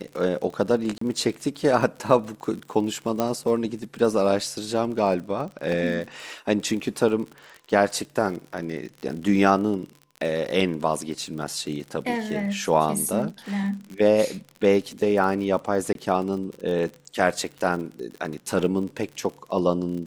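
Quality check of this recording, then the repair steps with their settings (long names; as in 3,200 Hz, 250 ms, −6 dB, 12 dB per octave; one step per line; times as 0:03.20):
surface crackle 45 per second −32 dBFS
0:00.98–0:01.01: drop-out 34 ms
0:03.20: click −10 dBFS
0:15.93–0:15.95: drop-out 22 ms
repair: click removal
repair the gap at 0:00.98, 34 ms
repair the gap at 0:15.93, 22 ms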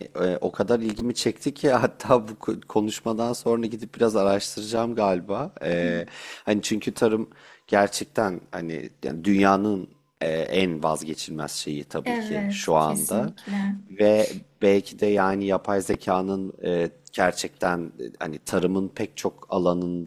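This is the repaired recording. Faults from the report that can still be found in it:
none of them is left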